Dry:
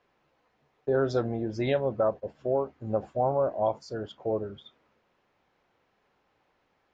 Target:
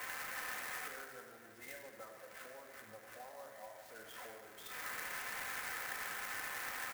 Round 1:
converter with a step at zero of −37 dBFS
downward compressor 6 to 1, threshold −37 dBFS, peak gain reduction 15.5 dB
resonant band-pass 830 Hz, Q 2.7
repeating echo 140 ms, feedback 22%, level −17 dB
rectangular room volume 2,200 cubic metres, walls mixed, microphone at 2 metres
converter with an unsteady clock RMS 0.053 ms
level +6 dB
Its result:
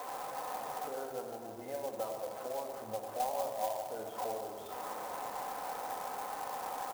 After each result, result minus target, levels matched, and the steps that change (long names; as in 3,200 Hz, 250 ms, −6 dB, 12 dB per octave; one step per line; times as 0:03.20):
2,000 Hz band −13.0 dB; downward compressor: peak gain reduction −5.5 dB
change: resonant band-pass 1,800 Hz, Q 2.7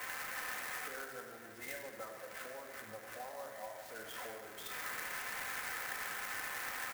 downward compressor: peak gain reduction −5.5 dB
change: downward compressor 6 to 1, threshold −43.5 dBFS, peak gain reduction 21 dB